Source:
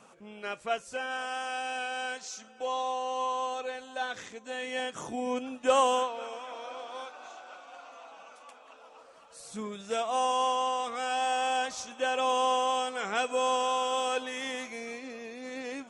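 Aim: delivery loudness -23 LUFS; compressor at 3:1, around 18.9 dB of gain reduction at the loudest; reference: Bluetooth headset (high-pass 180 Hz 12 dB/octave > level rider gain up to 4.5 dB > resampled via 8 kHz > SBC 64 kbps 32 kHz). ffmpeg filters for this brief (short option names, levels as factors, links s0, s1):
-af "acompressor=threshold=0.00501:ratio=3,highpass=180,dynaudnorm=m=1.68,aresample=8000,aresample=44100,volume=13.3" -ar 32000 -c:a sbc -b:a 64k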